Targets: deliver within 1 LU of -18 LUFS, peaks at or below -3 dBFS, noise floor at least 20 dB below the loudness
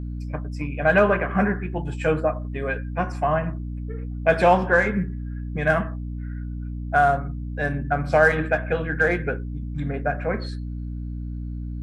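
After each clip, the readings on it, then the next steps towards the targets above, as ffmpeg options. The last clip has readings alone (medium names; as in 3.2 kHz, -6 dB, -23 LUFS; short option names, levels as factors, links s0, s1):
hum 60 Hz; highest harmonic 300 Hz; hum level -28 dBFS; loudness -24.0 LUFS; peak level -4.5 dBFS; loudness target -18.0 LUFS
-> -af "bandreject=f=60:t=h:w=4,bandreject=f=120:t=h:w=4,bandreject=f=180:t=h:w=4,bandreject=f=240:t=h:w=4,bandreject=f=300:t=h:w=4"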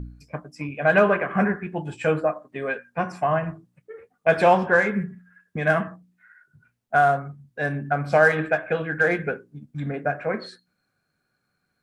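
hum not found; loudness -23.0 LUFS; peak level -5.0 dBFS; loudness target -18.0 LUFS
-> -af "volume=1.78,alimiter=limit=0.708:level=0:latency=1"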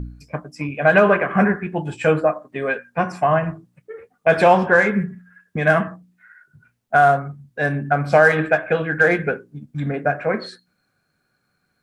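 loudness -18.5 LUFS; peak level -3.0 dBFS; noise floor -71 dBFS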